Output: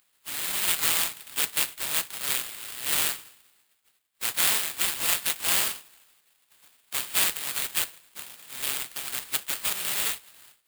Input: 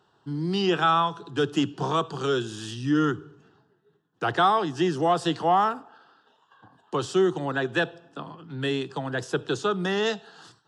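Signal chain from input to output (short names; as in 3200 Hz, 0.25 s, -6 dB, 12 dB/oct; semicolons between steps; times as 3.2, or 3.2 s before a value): spectral contrast lowered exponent 0.18; sample-rate reducer 5900 Hz, jitter 20%; pre-emphasis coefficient 0.9; gain +3.5 dB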